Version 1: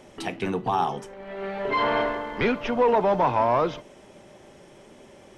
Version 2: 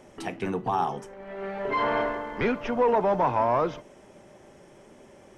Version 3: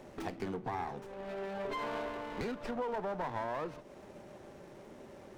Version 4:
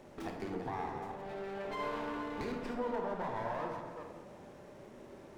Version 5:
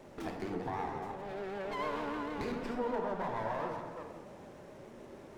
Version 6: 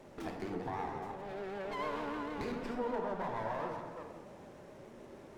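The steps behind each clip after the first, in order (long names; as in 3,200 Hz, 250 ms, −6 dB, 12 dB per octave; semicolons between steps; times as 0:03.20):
drawn EQ curve 1,700 Hz 0 dB, 3,900 Hz −6 dB, 5,800 Hz −1 dB; level −2 dB
downward compressor 3 to 1, threshold −38 dBFS, peak gain reduction 14.5 dB; windowed peak hold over 9 samples
delay that plays each chunk backwards 224 ms, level −8 dB; on a send at −2 dB: convolution reverb RT60 1.4 s, pre-delay 23 ms; on the sum: level −3.5 dB
pitch vibrato 6.6 Hz 68 cents; level +1.5 dB
level −1.5 dB; Ogg Vorbis 192 kbit/s 44,100 Hz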